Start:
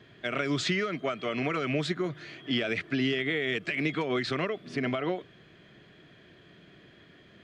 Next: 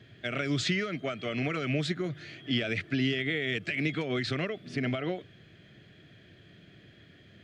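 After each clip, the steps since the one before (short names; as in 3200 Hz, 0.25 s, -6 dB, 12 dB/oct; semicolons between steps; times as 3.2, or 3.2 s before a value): fifteen-band EQ 100 Hz +8 dB, 400 Hz -3 dB, 1000 Hz -10 dB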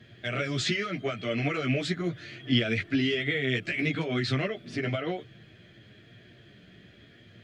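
chorus voices 4, 0.35 Hz, delay 13 ms, depth 4.6 ms; gain +5 dB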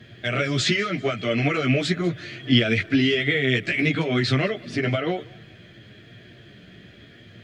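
thinning echo 0.193 s, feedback 37%, level -22 dB; gain +6.5 dB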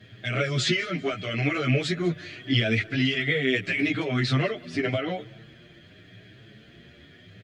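endless flanger 7.6 ms +0.81 Hz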